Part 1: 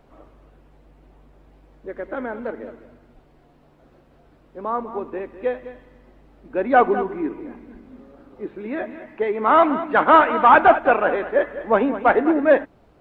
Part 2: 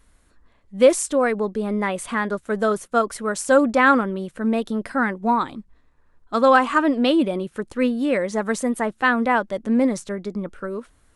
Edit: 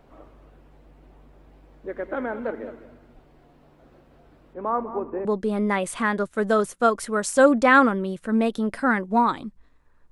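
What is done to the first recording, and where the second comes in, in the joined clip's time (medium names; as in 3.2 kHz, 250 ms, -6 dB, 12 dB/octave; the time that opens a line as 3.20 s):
part 1
4.53–5.25 s: low-pass 2.7 kHz -> 1.1 kHz
5.25 s: go over to part 2 from 1.37 s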